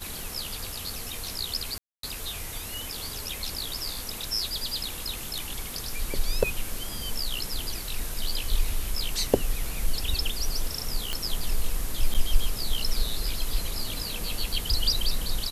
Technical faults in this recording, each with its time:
1.78–2.03 gap 0.253 s
11.13 pop -13 dBFS
12.14–12.15 gap 7.3 ms

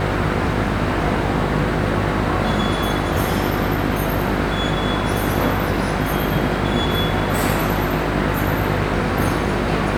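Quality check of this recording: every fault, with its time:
buzz 50 Hz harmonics 15 -24 dBFS

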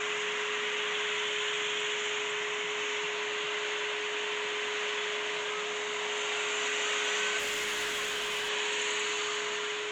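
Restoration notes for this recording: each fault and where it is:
tone 420 Hz -37 dBFS
7.38–8.5 clipped -29.5 dBFS

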